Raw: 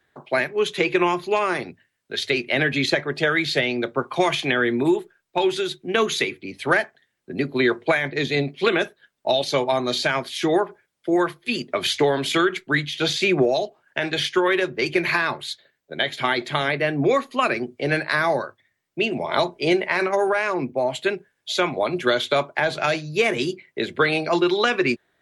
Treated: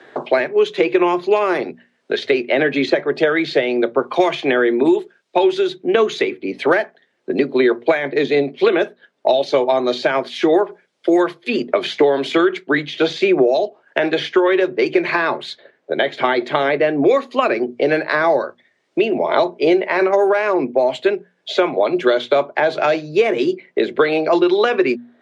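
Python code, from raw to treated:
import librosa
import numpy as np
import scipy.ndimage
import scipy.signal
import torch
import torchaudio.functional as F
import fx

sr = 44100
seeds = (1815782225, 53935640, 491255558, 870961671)

y = fx.bandpass_edges(x, sr, low_hz=190.0, high_hz=5200.0)
y = fx.peak_eq(y, sr, hz=470.0, db=9.5, octaves=2.0)
y = fx.hum_notches(y, sr, base_hz=60, count=4)
y = fx.band_squash(y, sr, depth_pct=70)
y = y * 10.0 ** (-1.5 / 20.0)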